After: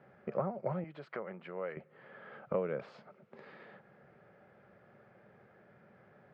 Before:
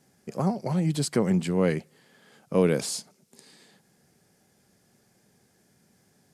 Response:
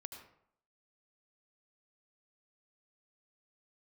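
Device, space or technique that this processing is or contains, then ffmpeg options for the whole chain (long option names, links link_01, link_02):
bass amplifier: -filter_complex "[0:a]acompressor=threshold=-39dB:ratio=5,highpass=70,equalizer=frequency=87:width_type=q:width=4:gain=-7,equalizer=frequency=170:width_type=q:width=4:gain=-4,equalizer=frequency=270:width_type=q:width=4:gain=-10,equalizer=frequency=570:width_type=q:width=4:gain=8,equalizer=frequency=1300:width_type=q:width=4:gain=8,lowpass=frequency=2300:width=0.5412,lowpass=frequency=2300:width=1.3066,asettb=1/sr,asplit=3[link_01][link_02][link_03];[link_01]atrim=end=0.844[link_04];[link_02]atrim=start=0.84:end=1.77,asetpts=PTS-STARTPTS,afade=type=in:duration=0.004:curve=qsin,afade=type=out:start_time=0.926:duration=0.004:curve=qsin,highpass=frequency=680:poles=1[link_05];[link_03]atrim=start=1.766[link_06];[link_04][link_05]acrossfade=duration=0.004:curve1=hsin:curve2=qsin[link_07];[link_07][link_06]acrossfade=duration=0.004:curve1=qsin:curve2=hsin,volume=4.5dB"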